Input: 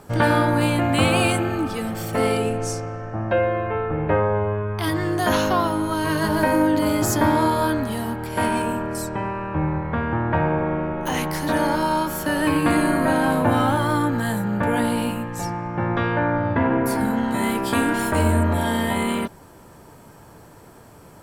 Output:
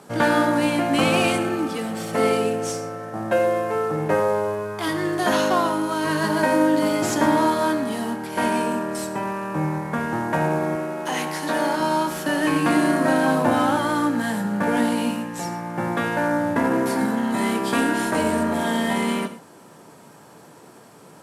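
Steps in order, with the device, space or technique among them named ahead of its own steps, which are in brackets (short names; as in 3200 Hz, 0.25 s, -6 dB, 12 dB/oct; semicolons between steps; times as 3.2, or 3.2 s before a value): early wireless headset (HPF 150 Hz 24 dB/oct; CVSD 64 kbps); 10.75–11.8 HPF 280 Hz 6 dB/oct; non-linear reverb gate 0.15 s flat, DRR 10 dB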